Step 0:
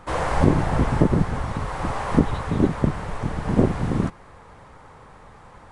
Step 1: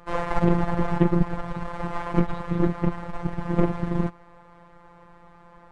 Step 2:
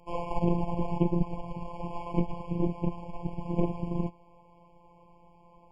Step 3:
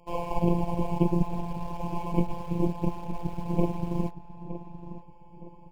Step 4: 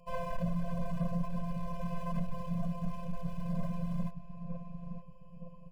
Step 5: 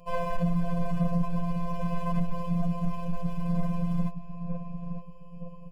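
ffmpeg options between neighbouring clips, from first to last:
ffmpeg -i in.wav -af "aeval=exprs='0.75*(cos(1*acos(clip(val(0)/0.75,-1,1)))-cos(1*PI/2))+0.0944*(cos(8*acos(clip(val(0)/0.75,-1,1)))-cos(8*PI/2))':channel_layout=same,lowpass=frequency=2200:poles=1,afftfilt=real='hypot(re,im)*cos(PI*b)':imag='0':win_size=1024:overlap=0.75" out.wav
ffmpeg -i in.wav -af "afftfilt=real='re*eq(mod(floor(b*sr/1024/1100),2),0)':imag='im*eq(mod(floor(b*sr/1024/1100),2),0)':win_size=1024:overlap=0.75,volume=-6dB" out.wav
ffmpeg -i in.wav -filter_complex "[0:a]asplit=2[link_01][link_02];[link_02]acrusher=bits=6:mix=0:aa=0.000001,volume=-11.5dB[link_03];[link_01][link_03]amix=inputs=2:normalize=0,asplit=2[link_04][link_05];[link_05]adelay=916,lowpass=frequency=2100:poles=1,volume=-12.5dB,asplit=2[link_06][link_07];[link_07]adelay=916,lowpass=frequency=2100:poles=1,volume=0.39,asplit=2[link_08][link_09];[link_09]adelay=916,lowpass=frequency=2100:poles=1,volume=0.39,asplit=2[link_10][link_11];[link_11]adelay=916,lowpass=frequency=2100:poles=1,volume=0.39[link_12];[link_04][link_06][link_08][link_10][link_12]amix=inputs=5:normalize=0" out.wav
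ffmpeg -i in.wav -af "asoftclip=type=tanh:threshold=-25.5dB,afftfilt=real='re*eq(mod(floor(b*sr/1024/240),2),0)':imag='im*eq(mod(floor(b*sr/1024/240),2),0)':win_size=1024:overlap=0.75" out.wav
ffmpeg -i in.wav -af "afftfilt=real='hypot(re,im)*cos(PI*b)':imag='0':win_size=1024:overlap=0.75,volume=7.5dB" out.wav

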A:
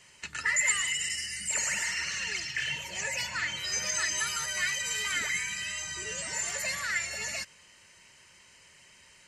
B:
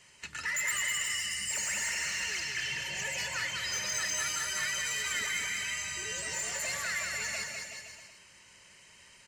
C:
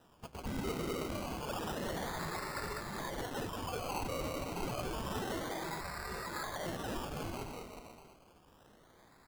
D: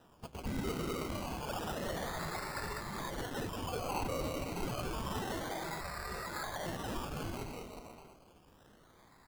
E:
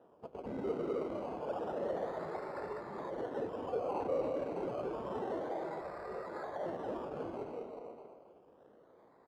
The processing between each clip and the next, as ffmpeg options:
ffmpeg -i in.wav -filter_complex "[0:a]asoftclip=type=tanh:threshold=-26.5dB,asplit=2[link_01][link_02];[link_02]aecho=0:1:200|370|514.5|637.3|741.7:0.631|0.398|0.251|0.158|0.1[link_03];[link_01][link_03]amix=inputs=2:normalize=0,volume=-2dB" out.wav
ffmpeg -i in.wav -af "acrusher=samples=20:mix=1:aa=0.000001:lfo=1:lforange=12:lforate=0.29,volume=-5dB" out.wav
ffmpeg -i in.wav -af "aphaser=in_gain=1:out_gain=1:delay=1.7:decay=0.21:speed=0.25:type=triangular" out.wav
ffmpeg -i in.wav -filter_complex "[0:a]bandpass=frequency=490:width_type=q:width=1.8:csg=0,asplit=2[link_01][link_02];[link_02]adelay=270,highpass=300,lowpass=3400,asoftclip=type=hard:threshold=-39dB,volume=-10dB[link_03];[link_01][link_03]amix=inputs=2:normalize=0,volume=6dB" out.wav

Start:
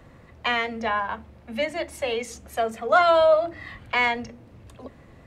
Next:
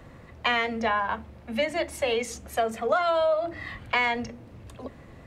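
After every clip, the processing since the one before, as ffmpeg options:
ffmpeg -i in.wav -af "acompressor=threshold=-22dB:ratio=12,volume=2dB" out.wav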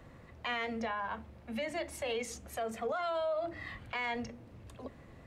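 ffmpeg -i in.wav -af "alimiter=limit=-21dB:level=0:latency=1:release=39,volume=-6.5dB" out.wav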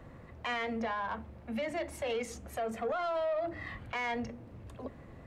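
ffmpeg -i in.wav -filter_complex "[0:a]asplit=2[link_01][link_02];[link_02]adynamicsmooth=sensitivity=3.5:basefreq=2800,volume=-1dB[link_03];[link_01][link_03]amix=inputs=2:normalize=0,asoftclip=type=tanh:threshold=-24.5dB,volume=-2dB" out.wav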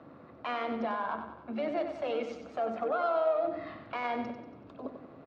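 ffmpeg -i in.wav -af "tremolo=f=150:d=0.4,highpass=180,equalizer=frequency=290:width_type=q:width=4:gain=7,equalizer=frequency=660:width_type=q:width=4:gain=4,equalizer=frequency=1300:width_type=q:width=4:gain=6,equalizer=frequency=1900:width_type=q:width=4:gain=-9,equalizer=frequency=3100:width_type=q:width=4:gain=-4,lowpass=frequency=4400:width=0.5412,lowpass=frequency=4400:width=1.3066,aecho=1:1:94|188|282|376|470|564:0.398|0.195|0.0956|0.0468|0.023|0.0112,volume=1.5dB" out.wav

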